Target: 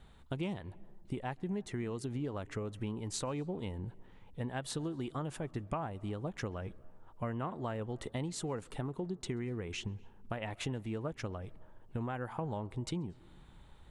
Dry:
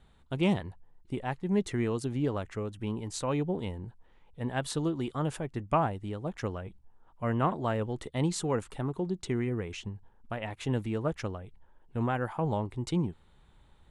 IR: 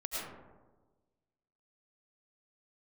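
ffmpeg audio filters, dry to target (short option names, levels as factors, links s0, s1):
-filter_complex "[0:a]acompressor=threshold=0.0126:ratio=6,asplit=2[s0][s1];[1:a]atrim=start_sample=2205,highshelf=f=3400:g=-8.5,adelay=134[s2];[s1][s2]afir=irnorm=-1:irlink=0,volume=0.0531[s3];[s0][s3]amix=inputs=2:normalize=0,volume=1.41"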